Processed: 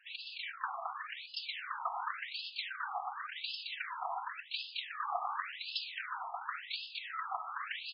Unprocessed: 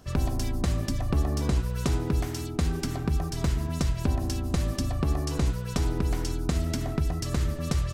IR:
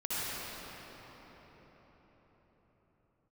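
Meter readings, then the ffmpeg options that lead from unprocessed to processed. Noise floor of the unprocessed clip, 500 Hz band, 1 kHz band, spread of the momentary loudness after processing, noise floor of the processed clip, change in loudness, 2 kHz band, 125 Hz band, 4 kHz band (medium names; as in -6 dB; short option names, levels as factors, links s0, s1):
-33 dBFS, -17.5 dB, +1.5 dB, 3 LU, -51 dBFS, -11.0 dB, +2.0 dB, under -40 dB, 0.0 dB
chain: -filter_complex "[0:a]bandreject=f=46.74:t=h:w=4,bandreject=f=93.48:t=h:w=4,bandreject=f=140.22:t=h:w=4,bandreject=f=186.96:t=h:w=4,bandreject=f=233.7:t=h:w=4,bandreject=f=280.44:t=h:w=4,bandreject=f=327.18:t=h:w=4,bandreject=f=373.92:t=h:w=4,bandreject=f=420.66:t=h:w=4,bandreject=f=467.4:t=h:w=4,bandreject=f=514.14:t=h:w=4,bandreject=f=560.88:t=h:w=4,bandreject=f=607.62:t=h:w=4,bandreject=f=654.36:t=h:w=4,bandreject=f=701.1:t=h:w=4,bandreject=f=747.84:t=h:w=4,bandreject=f=794.58:t=h:w=4,bandreject=f=841.32:t=h:w=4,bandreject=f=888.06:t=h:w=4,bandreject=f=934.8:t=h:w=4,bandreject=f=981.54:t=h:w=4,bandreject=f=1028.28:t=h:w=4,bandreject=f=1075.02:t=h:w=4,bandreject=f=1121.76:t=h:w=4,afftfilt=real='hypot(re,im)*cos(2*PI*random(0))':imag='hypot(re,im)*sin(2*PI*random(1))':win_size=512:overlap=0.75,asplit=2[s0][s1];[s1]aecho=0:1:218|243:0.668|0.178[s2];[s0][s2]amix=inputs=2:normalize=0,afftfilt=real='re*between(b*sr/1024,930*pow(3700/930,0.5+0.5*sin(2*PI*0.91*pts/sr))/1.41,930*pow(3700/930,0.5+0.5*sin(2*PI*0.91*pts/sr))*1.41)':imag='im*between(b*sr/1024,930*pow(3700/930,0.5+0.5*sin(2*PI*0.91*pts/sr))/1.41,930*pow(3700/930,0.5+0.5*sin(2*PI*0.91*pts/sr))*1.41)':win_size=1024:overlap=0.75,volume=3.55"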